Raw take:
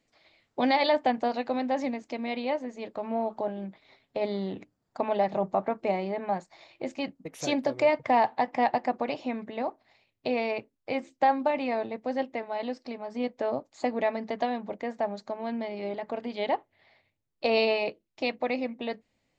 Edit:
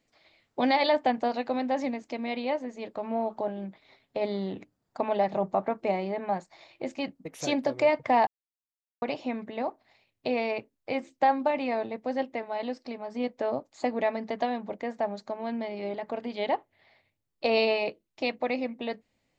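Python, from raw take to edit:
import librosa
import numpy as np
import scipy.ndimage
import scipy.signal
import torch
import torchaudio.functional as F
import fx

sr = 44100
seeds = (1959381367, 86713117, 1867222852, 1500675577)

y = fx.edit(x, sr, fx.silence(start_s=8.27, length_s=0.75), tone=tone)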